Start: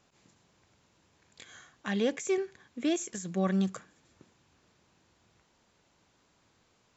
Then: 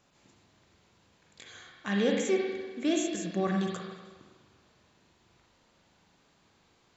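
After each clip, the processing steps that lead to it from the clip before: on a send at -1 dB: peaking EQ 4.6 kHz +14.5 dB 0.6 oct + reverberation RT60 1.4 s, pre-delay 39 ms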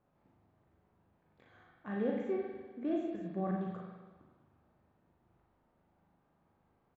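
low-pass 1.1 kHz 12 dB/octave; doubling 38 ms -4 dB; trim -6.5 dB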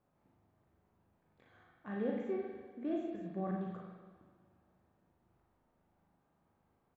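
Schroeder reverb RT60 3 s, combs from 27 ms, DRR 19 dB; trim -2.5 dB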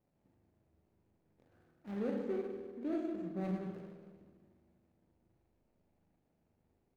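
median filter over 41 samples; filtered feedback delay 75 ms, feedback 69%, low-pass 1.6 kHz, level -11 dB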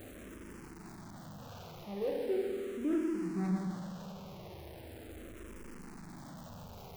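jump at every zero crossing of -43.5 dBFS; barber-pole phaser -0.39 Hz; trim +4 dB

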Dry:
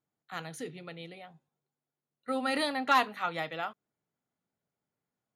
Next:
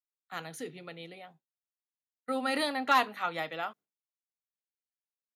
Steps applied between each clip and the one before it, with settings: expander -49 dBFS; high-pass 170 Hz; peaking EQ 13 kHz +5.5 dB 0.26 oct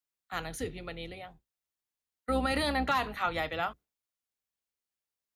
octave divider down 2 oct, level -2 dB; peak limiter -22 dBFS, peak gain reduction 9 dB; trim +3.5 dB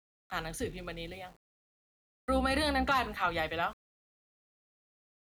small samples zeroed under -54 dBFS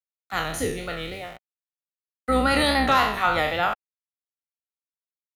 spectral sustain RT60 0.66 s; vibrato 3.7 Hz 54 cents; trim +7 dB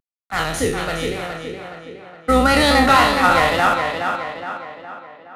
CVSD coder 64 kbps; tape echo 417 ms, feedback 55%, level -5 dB, low-pass 5.1 kHz; tape noise reduction on one side only decoder only; trim +6.5 dB

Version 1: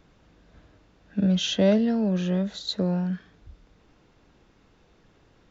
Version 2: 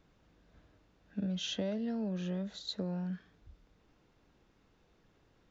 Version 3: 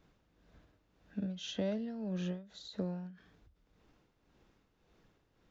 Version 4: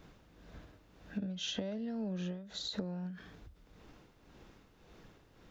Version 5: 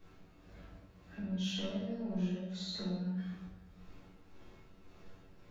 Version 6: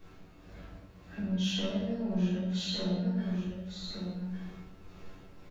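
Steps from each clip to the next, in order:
compression 5:1, threshold -23 dBFS, peak gain reduction 8 dB; trim -9 dB
tremolo 1.8 Hz, depth 60%; endings held to a fixed fall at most 140 dB/s; trim +1 dB
compression 20:1, threshold -45 dBFS, peak gain reduction 16 dB; trim +10.5 dB
feedback comb 95 Hz, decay 0.25 s, harmonics all, mix 80%; in parallel at -4 dB: wavefolder -37.5 dBFS; on the sum: reverberation RT60 1.0 s, pre-delay 3 ms, DRR -8 dB; trim -7 dB
delay 1155 ms -6 dB; trim +5.5 dB

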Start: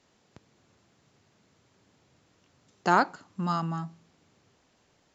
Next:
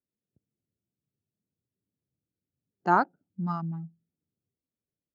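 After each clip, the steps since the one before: local Wiener filter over 41 samples; spectral contrast expander 1.5:1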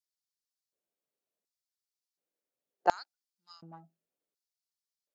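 LFO high-pass square 0.69 Hz 560–4700 Hz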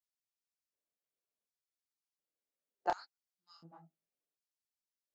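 detune thickener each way 54 cents; trim -3 dB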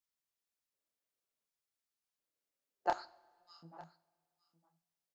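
delay 910 ms -20.5 dB; two-slope reverb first 0.51 s, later 2.4 s, from -18 dB, DRR 14 dB; trim +1 dB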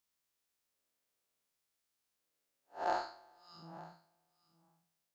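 spectral blur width 148 ms; trim +7.5 dB

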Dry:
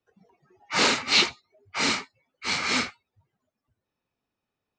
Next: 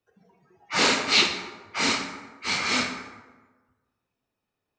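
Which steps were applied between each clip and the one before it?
reverberation RT60 1.3 s, pre-delay 23 ms, DRR 5 dB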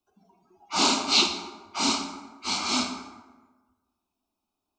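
static phaser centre 490 Hz, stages 6; trim +2.5 dB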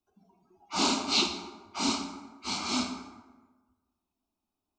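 bass shelf 340 Hz +6.5 dB; trim -5.5 dB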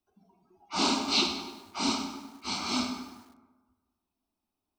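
band-stop 6.9 kHz, Q 6.5; bit-crushed delay 100 ms, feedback 55%, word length 8-bit, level -12.5 dB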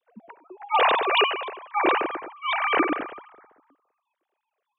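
formants replaced by sine waves; trim +7.5 dB

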